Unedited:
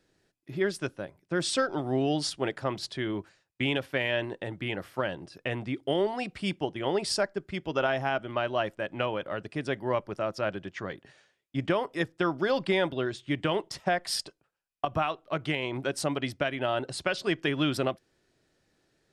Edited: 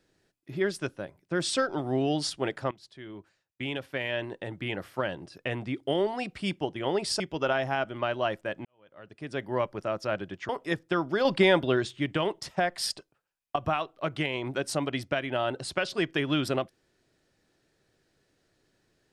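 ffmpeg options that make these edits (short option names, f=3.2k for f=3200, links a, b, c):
-filter_complex "[0:a]asplit=7[a][b][c][d][e][f][g];[a]atrim=end=2.71,asetpts=PTS-STARTPTS,afade=t=out:st=2.706:d=0.004:c=hsin:silence=0.1[h];[b]atrim=start=2.71:end=7.202,asetpts=PTS-STARTPTS,afade=t=in:d=2.03:silence=0.1[i];[c]atrim=start=7.538:end=8.99,asetpts=PTS-STARTPTS,afade=t=out:st=1.448:d=0.004:c=hsin[j];[d]atrim=start=8.99:end=10.832,asetpts=PTS-STARTPTS,afade=t=in:d=0.83:c=qua[k];[e]atrim=start=11.778:end=12.542[l];[f]atrim=start=12.538:end=13.282,asetpts=PTS-STARTPTS,volume=5dB[m];[g]atrim=start=13.278[n];[h][i]concat=n=2:v=0:a=1[o];[j][k]concat=n=2:v=0:a=1[p];[o][p]acrossfade=d=0.004:c1=hsin:c2=hsin[q];[q][l]acrossfade=d=0.004:c1=hsin:c2=hsin[r];[r][m]acrossfade=d=0.004:c1=hsin:c2=hsin[s];[s][n]acrossfade=d=0.004:c1=hsin:c2=hsin"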